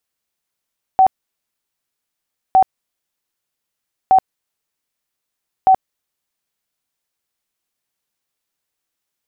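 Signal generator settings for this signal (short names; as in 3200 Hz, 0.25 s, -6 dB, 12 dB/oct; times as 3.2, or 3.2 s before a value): tone bursts 760 Hz, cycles 58, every 1.56 s, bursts 4, -6.5 dBFS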